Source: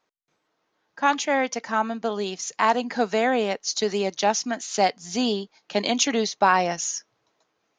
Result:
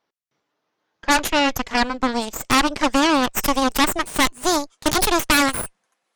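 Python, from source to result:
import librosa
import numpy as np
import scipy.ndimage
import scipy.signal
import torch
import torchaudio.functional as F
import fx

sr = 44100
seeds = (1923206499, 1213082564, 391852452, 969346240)

y = fx.speed_glide(x, sr, from_pct=88, to_pct=165)
y = fx.cheby_harmonics(y, sr, harmonics=(8,), levels_db=(-6,), full_scale_db=-6.5)
y = F.gain(torch.from_numpy(y), -1.5).numpy()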